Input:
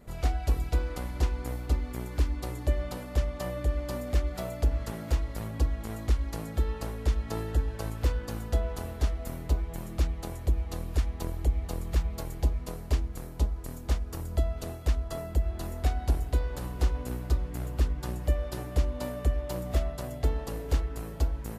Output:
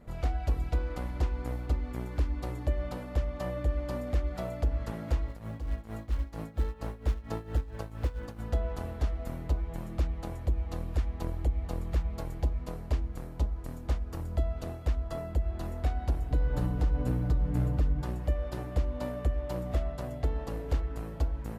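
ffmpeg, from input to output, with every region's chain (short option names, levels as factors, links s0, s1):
-filter_complex "[0:a]asettb=1/sr,asplit=3[s0][s1][s2];[s0]atrim=end=5.284[s3];[s1]atrim=start=5.28:end=8.39,asetpts=PTS-STARTPTS,afade=t=in:d=0.004:c=qsin,afade=t=out:st=3.106:d=0.004:c=qsin,tremolo=f=4.4:d=0.79,acrusher=bits=6:mode=log:mix=0:aa=0.000001[s4];[s2]atrim=start=8.386[s5];[s3][s4]acrossfade=d=0.004:c1=hsin:c2=qsin[s6];[s6][s5]acrossfade=d=0.004:c1=qsin:c2=hsin,asettb=1/sr,asplit=3[s7][s8][s9];[s7]atrim=end=16.304[s10];[s8]atrim=start=16.3:end=18.04,asetpts=PTS-STARTPTS,afade=t=in:d=0.004:c=qsin,afade=t=out:st=1.736:d=0.004:c=qsin,lowshelf=f=360:g=9,aecho=1:1:6.7:0.53,atrim=end_sample=76734[s11];[s9]atrim=start=18.036[s12];[s10][s11]acrossfade=d=0.004:c1=hsin:c2=qsin[s13];[s13][s12]acrossfade=d=0.004:c1=qsin:c2=hsin,highshelf=f=4000:g=-11.5,bandreject=f=400:w=12,alimiter=limit=0.119:level=0:latency=1:release=165"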